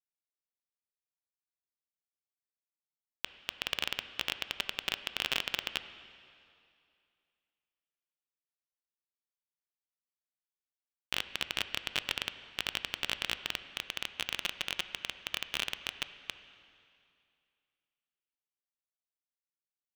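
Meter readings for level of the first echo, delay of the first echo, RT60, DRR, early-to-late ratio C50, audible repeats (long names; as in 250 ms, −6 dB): no echo audible, no echo audible, 2.5 s, 11.0 dB, 12.0 dB, no echo audible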